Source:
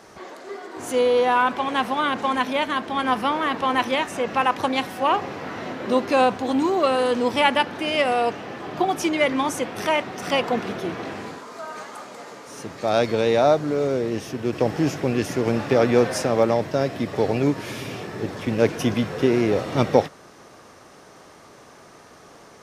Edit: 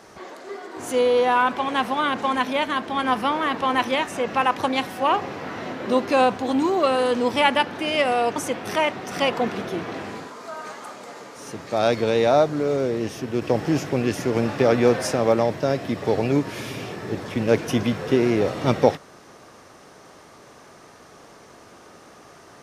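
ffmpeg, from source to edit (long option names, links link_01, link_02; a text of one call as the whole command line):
ffmpeg -i in.wav -filter_complex "[0:a]asplit=2[link_01][link_02];[link_01]atrim=end=8.362[link_03];[link_02]atrim=start=9.468[link_04];[link_03][link_04]acrossfade=duration=0.004:curve1=hsin:curve2=hsin" out.wav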